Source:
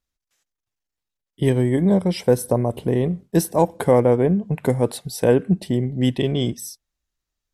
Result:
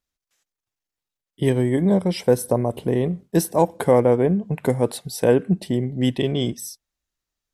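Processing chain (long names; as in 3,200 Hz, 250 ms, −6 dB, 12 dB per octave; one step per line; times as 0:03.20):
low-shelf EQ 100 Hz −6 dB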